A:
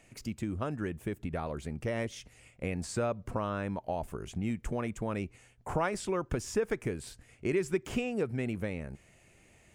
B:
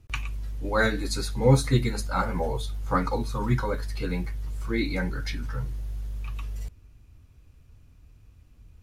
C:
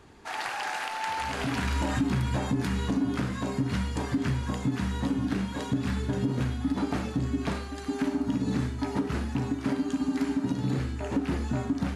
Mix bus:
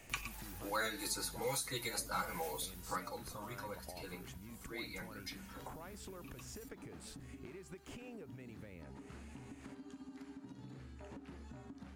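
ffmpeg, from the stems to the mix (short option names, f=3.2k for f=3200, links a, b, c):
-filter_complex "[0:a]acompressor=threshold=-39dB:ratio=6,volume=3dB[a];[1:a]aemphasis=mode=production:type=bsi,aecho=1:1:6.1:0.51,volume=-4.5dB,afade=t=out:st=2.48:d=0.65:silence=0.266073[b];[2:a]volume=-16dB[c];[a][c]amix=inputs=2:normalize=0,acompressor=threshold=-47dB:ratio=6,volume=0dB[d];[b][d]amix=inputs=2:normalize=0,acrossover=split=470|1300[e][f][g];[e]acompressor=threshold=-48dB:ratio=4[h];[f]acompressor=threshold=-44dB:ratio=4[i];[g]acompressor=threshold=-39dB:ratio=4[j];[h][i][j]amix=inputs=3:normalize=0"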